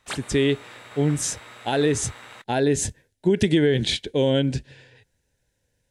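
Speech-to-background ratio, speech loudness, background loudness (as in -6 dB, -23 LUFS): 18.5 dB, -23.5 LUFS, -42.0 LUFS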